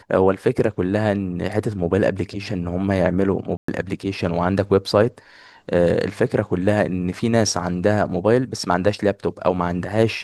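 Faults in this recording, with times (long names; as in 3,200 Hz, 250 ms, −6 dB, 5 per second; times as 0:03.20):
0:03.57–0:03.68: drop-out 114 ms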